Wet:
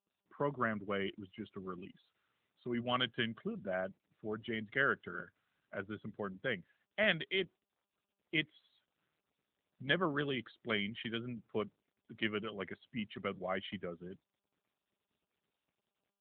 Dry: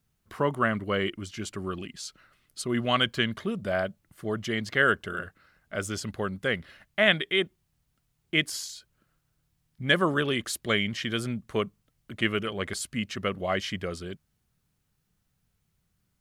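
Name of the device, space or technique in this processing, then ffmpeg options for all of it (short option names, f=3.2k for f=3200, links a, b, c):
mobile call with aggressive noise cancelling: -filter_complex "[0:a]asettb=1/sr,asplit=3[a][b][c];[a]atrim=end=11.384[d];[b]atrim=start=11.38:end=12.44,asetpts=PTS-STARTPTS,afade=t=in:d=0.004:c=qsin,afade=t=out:st=1.056:d=0.004:c=qsin,lowpass=8.8k[e];[c]atrim=start=12.436[f];[d][e]acrossfade=d=0.004:c1=hsin:c2=qsin[g];[g][f]acrossfade=d=0.004:c1=qsin:c2=hsin,highpass=f=110:w=0.5412,highpass=f=110:w=1.3066,afftdn=nr=16:nf=-39,volume=-9dB" -ar 8000 -c:a libopencore_amrnb -b:a 10200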